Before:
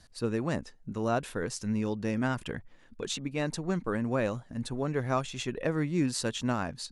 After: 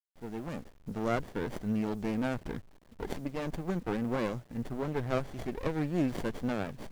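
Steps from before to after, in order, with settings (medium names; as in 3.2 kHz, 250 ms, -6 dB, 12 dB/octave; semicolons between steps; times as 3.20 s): fade-in on the opening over 0.77 s; word length cut 10-bit, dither none; sliding maximum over 33 samples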